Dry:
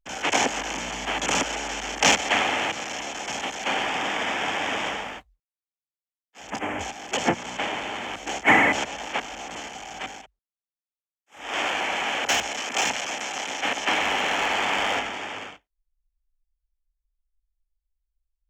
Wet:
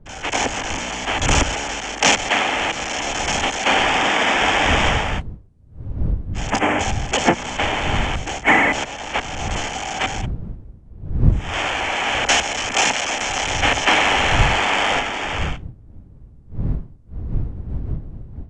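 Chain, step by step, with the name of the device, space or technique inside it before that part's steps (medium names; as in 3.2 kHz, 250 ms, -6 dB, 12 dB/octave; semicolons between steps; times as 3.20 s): smartphone video outdoors (wind noise 96 Hz -33 dBFS; level rider gain up to 13 dB; trim -1 dB; AAC 96 kbps 22.05 kHz)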